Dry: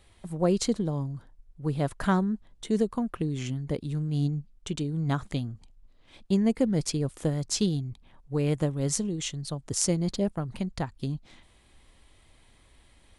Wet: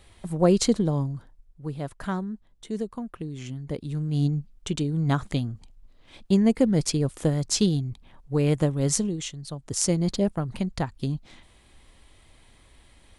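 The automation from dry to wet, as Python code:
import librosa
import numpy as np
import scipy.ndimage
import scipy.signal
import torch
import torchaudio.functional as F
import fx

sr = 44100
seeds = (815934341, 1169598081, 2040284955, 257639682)

y = fx.gain(x, sr, db=fx.line((1.0, 5.0), (1.78, -5.0), (3.33, -5.0), (4.3, 4.0), (9.04, 4.0), (9.36, -3.5), (10.01, 3.5)))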